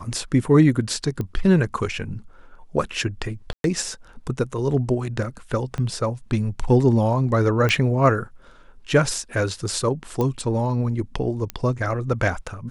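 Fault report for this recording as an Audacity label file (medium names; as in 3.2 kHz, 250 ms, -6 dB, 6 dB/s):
1.210000	1.210000	pop -16 dBFS
3.530000	3.640000	dropout 112 ms
5.780000	5.780000	pop -17 dBFS
7.690000	7.690000	pop -9 dBFS
10.210000	10.210000	pop -12 dBFS
11.500000	11.500000	pop -12 dBFS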